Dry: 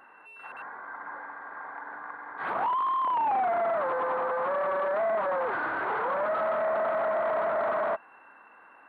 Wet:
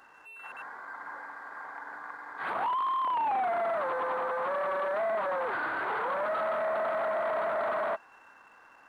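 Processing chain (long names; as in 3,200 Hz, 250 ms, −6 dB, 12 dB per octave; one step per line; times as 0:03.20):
high-shelf EQ 2,700 Hz +10 dB
slack as between gear wheels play −56 dBFS
level −3.5 dB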